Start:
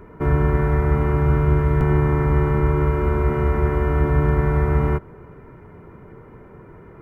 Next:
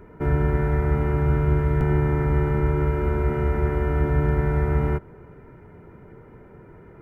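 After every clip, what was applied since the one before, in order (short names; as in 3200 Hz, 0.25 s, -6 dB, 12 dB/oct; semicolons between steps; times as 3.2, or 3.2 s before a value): notch 1100 Hz, Q 6.5; gain -3 dB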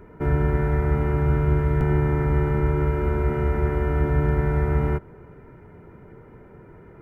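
nothing audible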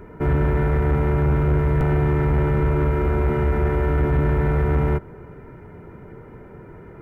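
soft clip -18.5 dBFS, distortion -14 dB; gain +5 dB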